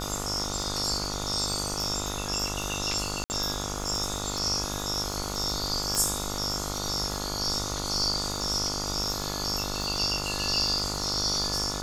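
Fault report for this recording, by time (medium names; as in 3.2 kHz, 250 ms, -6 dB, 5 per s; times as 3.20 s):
buzz 50 Hz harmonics 29 -35 dBFS
crackle 65 per s -33 dBFS
3.24–3.30 s: dropout 59 ms
5.95 s: pop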